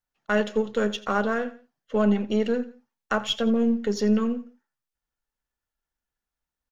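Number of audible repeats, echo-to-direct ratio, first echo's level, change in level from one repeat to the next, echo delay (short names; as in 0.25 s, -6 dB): 2, -17.5 dB, -18.0 dB, -8.0 dB, 86 ms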